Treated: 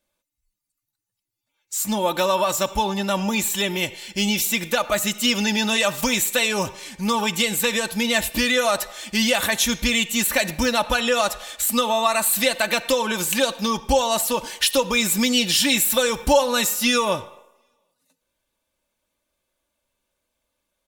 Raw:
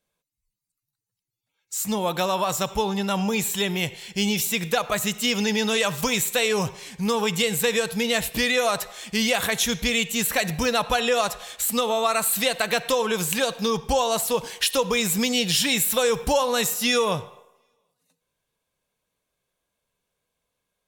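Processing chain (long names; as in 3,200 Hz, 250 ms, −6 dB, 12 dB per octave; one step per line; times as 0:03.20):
comb filter 3.4 ms, depth 63%
level +1.5 dB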